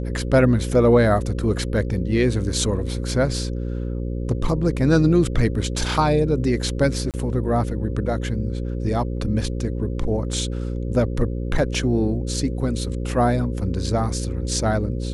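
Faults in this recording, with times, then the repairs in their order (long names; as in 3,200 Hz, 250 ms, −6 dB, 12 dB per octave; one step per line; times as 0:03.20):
mains buzz 60 Hz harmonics 9 −26 dBFS
0:07.11–0:07.14: drop-out 28 ms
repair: hum removal 60 Hz, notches 9
repair the gap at 0:07.11, 28 ms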